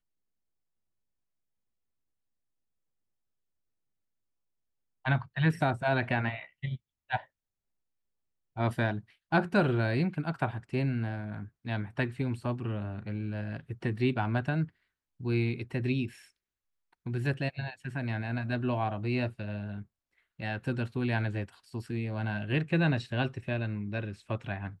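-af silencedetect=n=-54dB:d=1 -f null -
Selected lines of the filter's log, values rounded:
silence_start: 0.00
silence_end: 5.05 | silence_duration: 5.05
silence_start: 7.25
silence_end: 8.56 | silence_duration: 1.31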